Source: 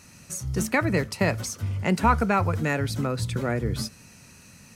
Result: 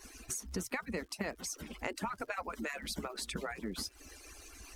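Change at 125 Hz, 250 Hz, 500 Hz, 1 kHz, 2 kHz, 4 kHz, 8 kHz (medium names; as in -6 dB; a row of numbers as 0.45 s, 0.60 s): -23.0 dB, -15.0 dB, -14.5 dB, -15.5 dB, -12.0 dB, -6.0 dB, -6.5 dB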